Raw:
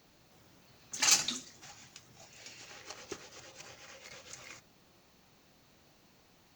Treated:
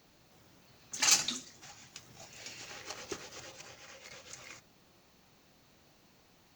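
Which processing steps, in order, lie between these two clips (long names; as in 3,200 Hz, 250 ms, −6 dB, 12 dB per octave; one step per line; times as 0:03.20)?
0:01.94–0:03.56: leveller curve on the samples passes 1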